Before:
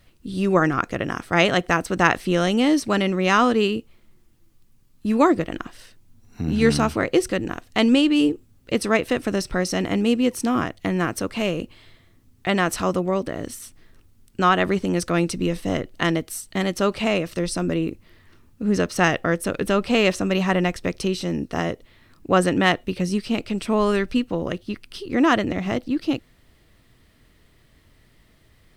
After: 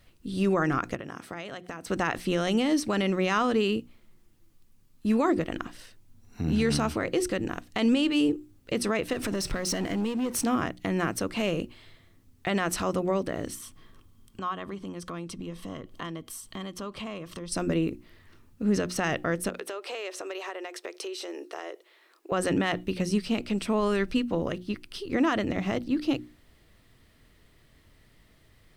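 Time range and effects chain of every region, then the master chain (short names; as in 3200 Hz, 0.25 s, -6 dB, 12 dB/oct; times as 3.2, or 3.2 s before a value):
0.95–1.87 HPF 98 Hz + compressor 16:1, threshold -30 dBFS
9.13–10.44 compressor 12:1, threshold -30 dBFS + sample leveller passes 3
13.55–17.52 bell 180 Hz +4.5 dB 2.1 oct + compressor 3:1, threshold -36 dBFS + small resonant body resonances 1100/3200 Hz, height 13 dB, ringing for 25 ms
19.49–22.32 elliptic high-pass 350 Hz, stop band 50 dB + compressor, threshold -30 dBFS
whole clip: notches 60/120/180/240/300/360 Hz; limiter -13 dBFS; gain -2.5 dB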